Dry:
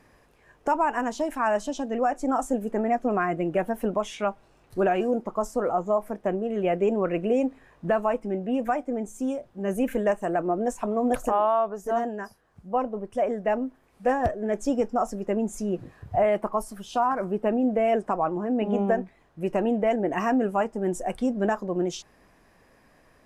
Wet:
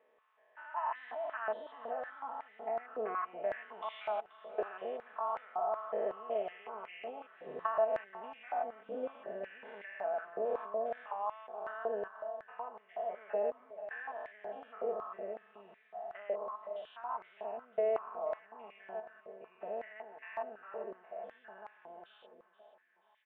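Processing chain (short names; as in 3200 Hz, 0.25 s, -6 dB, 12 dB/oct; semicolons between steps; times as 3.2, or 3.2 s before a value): stepped spectrum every 0.2 s; Doppler pass-by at 8.36, 11 m/s, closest 9.1 m; compressor 16:1, threshold -43 dBFS, peak gain reduction 19 dB; on a send: feedback echo 0.481 s, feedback 52%, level -14 dB; on the sum: downsampling 8000 Hz; comb 4.6 ms, depth 72%; stepped high-pass 5.4 Hz 500–2100 Hz; gain +5 dB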